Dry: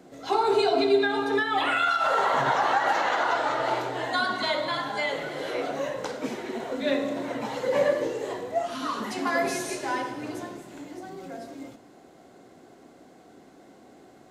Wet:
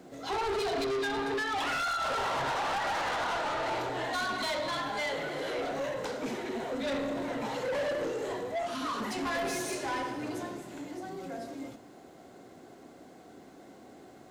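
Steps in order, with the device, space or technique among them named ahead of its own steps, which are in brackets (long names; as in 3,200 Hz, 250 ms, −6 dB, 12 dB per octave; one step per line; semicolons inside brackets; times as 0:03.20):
open-reel tape (soft clipping −29 dBFS, distortion −7 dB; parametric band 84 Hz +2.5 dB; white noise bed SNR 45 dB)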